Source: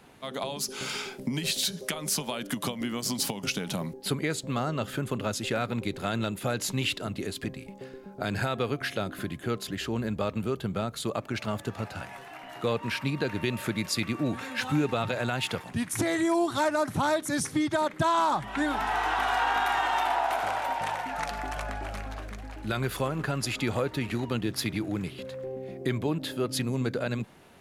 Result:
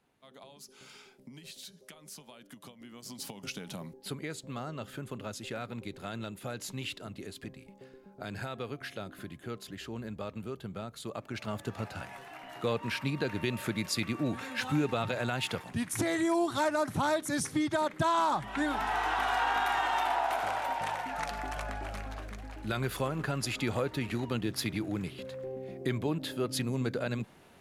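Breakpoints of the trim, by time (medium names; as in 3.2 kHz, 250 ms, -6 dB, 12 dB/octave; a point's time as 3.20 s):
2.79 s -19 dB
3.43 s -9.5 dB
11.01 s -9.5 dB
11.74 s -3 dB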